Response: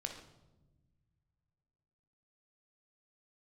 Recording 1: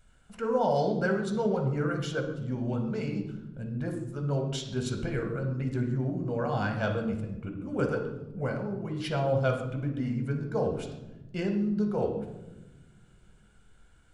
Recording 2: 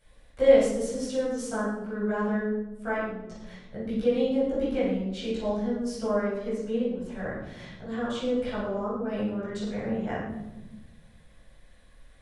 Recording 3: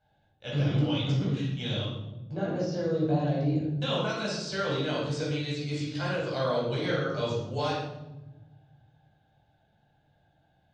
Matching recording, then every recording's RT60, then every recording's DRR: 1; not exponential, 1.1 s, 1.1 s; 3.0, -11.0, -7.0 dB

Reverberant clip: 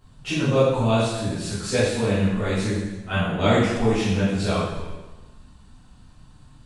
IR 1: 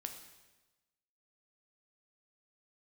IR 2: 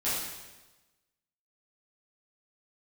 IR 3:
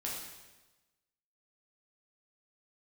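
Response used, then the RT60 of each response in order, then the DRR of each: 2; 1.2, 1.2, 1.2 s; 4.5, -12.0, -4.5 dB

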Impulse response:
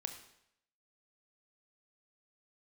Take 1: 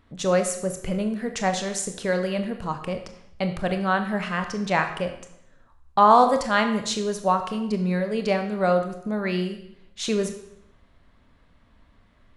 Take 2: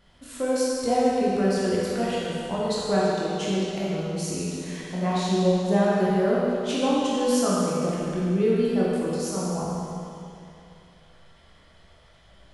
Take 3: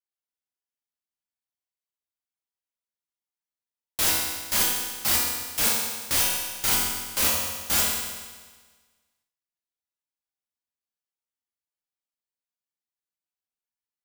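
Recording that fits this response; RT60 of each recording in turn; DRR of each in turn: 1; 0.75, 2.7, 1.4 s; 6.0, -7.5, -5.5 dB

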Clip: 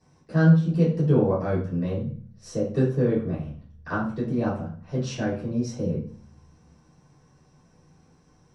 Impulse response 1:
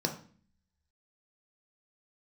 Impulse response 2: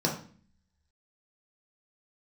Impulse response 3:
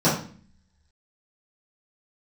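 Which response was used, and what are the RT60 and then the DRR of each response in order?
3; 0.45, 0.45, 0.45 s; 3.0, -2.0, -12.0 dB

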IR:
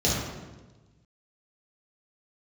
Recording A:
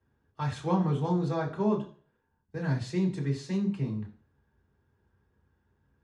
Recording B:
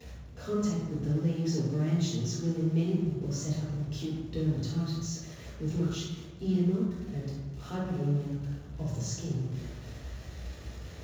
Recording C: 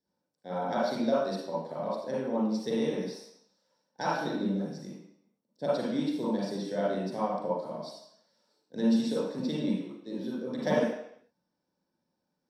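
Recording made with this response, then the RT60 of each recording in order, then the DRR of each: B; 0.40, 1.2, 0.70 s; -2.5, -7.0, -8.5 dB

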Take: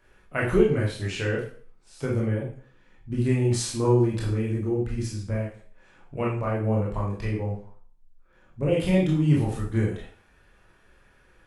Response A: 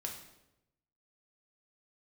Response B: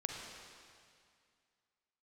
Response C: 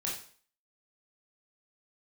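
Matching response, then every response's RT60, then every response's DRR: C; 0.90, 2.2, 0.45 s; 0.0, 0.5, -4.5 dB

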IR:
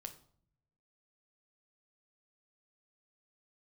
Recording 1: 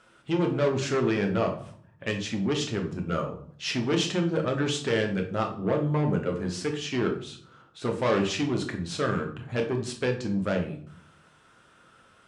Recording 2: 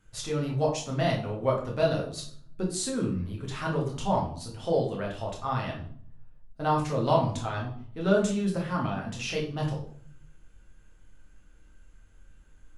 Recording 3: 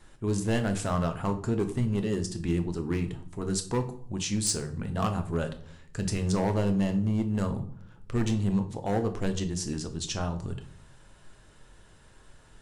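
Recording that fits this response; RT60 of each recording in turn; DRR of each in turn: 3; 0.55, 0.55, 0.60 s; 2.0, -3.0, 6.5 dB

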